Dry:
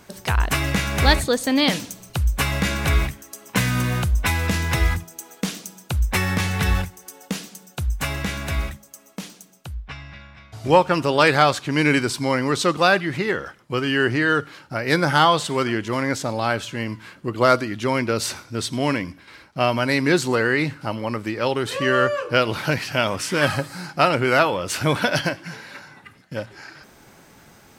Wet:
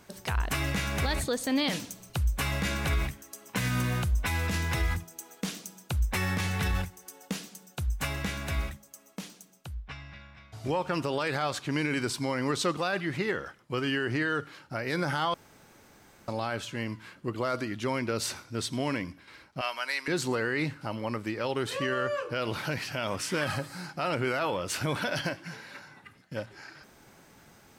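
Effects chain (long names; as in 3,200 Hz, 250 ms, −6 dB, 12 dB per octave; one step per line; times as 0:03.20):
0:19.61–0:20.08: high-pass filter 1,100 Hz 12 dB per octave
brickwall limiter −12.5 dBFS, peak gain reduction 10 dB
0:15.34–0:16.28: fill with room tone
level −6.5 dB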